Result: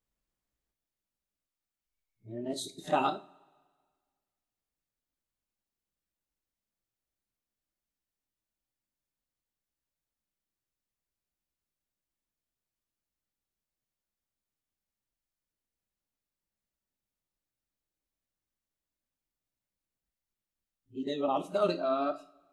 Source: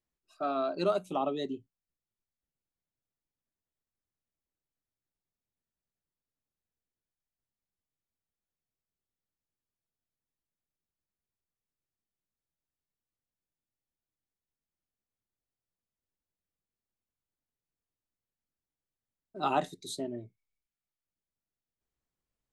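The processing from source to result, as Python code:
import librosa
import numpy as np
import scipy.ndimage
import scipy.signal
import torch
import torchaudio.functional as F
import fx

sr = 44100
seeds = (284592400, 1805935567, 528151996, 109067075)

y = x[::-1].copy()
y = fx.rev_double_slope(y, sr, seeds[0], early_s=0.3, late_s=1.7, knee_db=-26, drr_db=6.0)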